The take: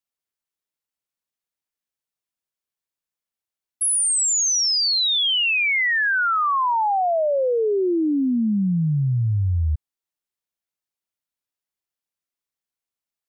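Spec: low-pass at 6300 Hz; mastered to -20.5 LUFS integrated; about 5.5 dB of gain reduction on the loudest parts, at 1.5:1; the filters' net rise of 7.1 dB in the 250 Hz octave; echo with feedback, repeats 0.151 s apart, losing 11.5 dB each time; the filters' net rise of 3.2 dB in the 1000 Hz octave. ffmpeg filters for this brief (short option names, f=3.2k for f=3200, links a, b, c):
-af "lowpass=6.3k,equalizer=f=250:t=o:g=9,equalizer=f=1k:t=o:g=3.5,acompressor=threshold=-26dB:ratio=1.5,aecho=1:1:151|302|453:0.266|0.0718|0.0194"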